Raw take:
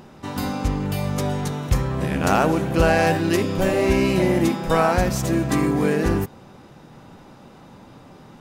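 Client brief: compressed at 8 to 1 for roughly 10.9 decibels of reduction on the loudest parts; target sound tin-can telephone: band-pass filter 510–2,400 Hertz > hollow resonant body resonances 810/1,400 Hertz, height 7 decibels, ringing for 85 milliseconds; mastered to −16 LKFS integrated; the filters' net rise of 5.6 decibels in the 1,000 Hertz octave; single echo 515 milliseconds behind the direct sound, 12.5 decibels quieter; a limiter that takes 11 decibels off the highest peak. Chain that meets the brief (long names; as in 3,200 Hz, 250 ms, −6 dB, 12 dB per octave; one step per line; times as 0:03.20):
parametric band 1,000 Hz +8.5 dB
downward compressor 8 to 1, threshold −21 dBFS
brickwall limiter −21 dBFS
band-pass filter 510–2,400 Hz
single-tap delay 515 ms −12.5 dB
hollow resonant body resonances 810/1,400 Hz, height 7 dB, ringing for 85 ms
level +18 dB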